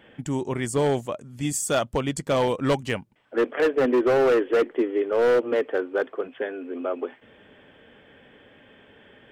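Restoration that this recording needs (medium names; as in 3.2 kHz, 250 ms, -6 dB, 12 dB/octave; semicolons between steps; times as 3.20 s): clip repair -16 dBFS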